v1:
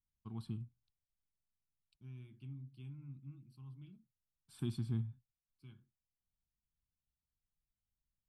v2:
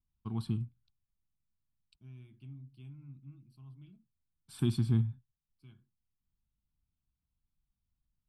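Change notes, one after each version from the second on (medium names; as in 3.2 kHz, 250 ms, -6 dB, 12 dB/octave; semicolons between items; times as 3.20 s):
first voice +9.0 dB; second voice: remove Butterworth band-stop 690 Hz, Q 5.2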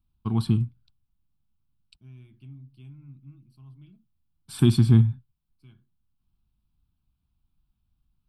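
first voice +11.5 dB; second voice +3.5 dB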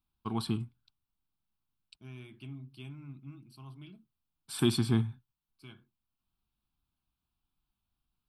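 second voice +11.5 dB; master: add tone controls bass -14 dB, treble 0 dB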